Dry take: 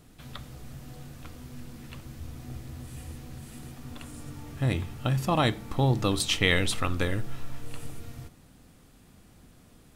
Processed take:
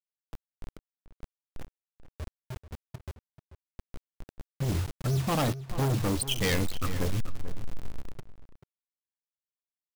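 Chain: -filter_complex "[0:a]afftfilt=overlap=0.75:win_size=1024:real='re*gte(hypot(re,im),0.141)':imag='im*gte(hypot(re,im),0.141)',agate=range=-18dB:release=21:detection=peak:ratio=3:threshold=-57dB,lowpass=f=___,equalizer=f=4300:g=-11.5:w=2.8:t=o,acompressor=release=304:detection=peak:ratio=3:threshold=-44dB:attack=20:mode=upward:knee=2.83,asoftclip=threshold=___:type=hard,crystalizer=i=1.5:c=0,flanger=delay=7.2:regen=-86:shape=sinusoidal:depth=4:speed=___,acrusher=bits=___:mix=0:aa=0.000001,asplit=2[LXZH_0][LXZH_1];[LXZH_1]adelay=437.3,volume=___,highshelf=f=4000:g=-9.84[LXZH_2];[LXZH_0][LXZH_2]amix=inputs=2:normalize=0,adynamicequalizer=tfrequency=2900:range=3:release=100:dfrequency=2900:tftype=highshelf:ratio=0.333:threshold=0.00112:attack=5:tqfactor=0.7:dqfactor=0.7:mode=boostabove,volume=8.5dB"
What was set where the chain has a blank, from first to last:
9000, -28.5dB, 0.53, 7, -13dB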